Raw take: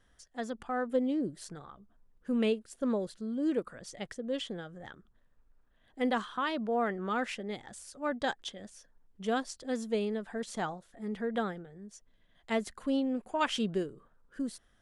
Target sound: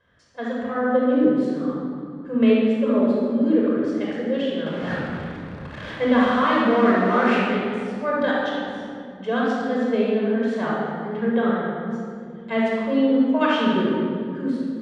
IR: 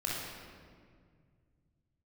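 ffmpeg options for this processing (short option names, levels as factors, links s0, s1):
-filter_complex "[0:a]asettb=1/sr,asplit=3[s0][s1][s2];[s0]atrim=end=4.664[s3];[s1]atrim=start=4.66:end=7.42,asetpts=PTS-STARTPTS,afade=t=in:d=0.004:c=qsin,afade=t=out:st=2.756:d=0.004:c=qsin,aeval=exprs='val(0)+0.5*0.0178*sgn(val(0))':c=same[s4];[s2]atrim=start=7.416[s5];[s3][s4]acrossfade=d=0.004:c1=hsin:c2=qsin[s6];[s6][s5]acrossfade=d=0.004:c1=qsin:c2=hsin,highpass=110,lowpass=3000[s7];[1:a]atrim=start_sample=2205,asetrate=36603,aresample=44100[s8];[s7][s8]afir=irnorm=-1:irlink=0,volume=1.78"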